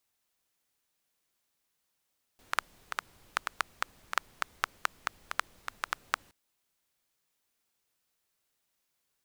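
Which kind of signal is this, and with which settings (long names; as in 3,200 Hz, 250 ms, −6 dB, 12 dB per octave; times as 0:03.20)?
rain-like ticks over hiss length 3.92 s, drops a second 5.2, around 1,300 Hz, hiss −22 dB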